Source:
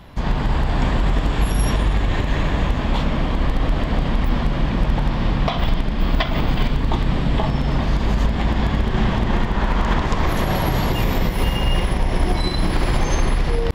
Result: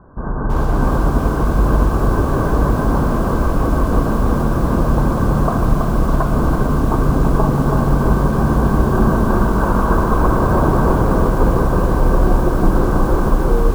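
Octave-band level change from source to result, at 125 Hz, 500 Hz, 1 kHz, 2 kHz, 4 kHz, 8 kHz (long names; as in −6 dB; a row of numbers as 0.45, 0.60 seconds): +4.5, +7.5, +6.0, +0.5, −11.0, 0.0 decibels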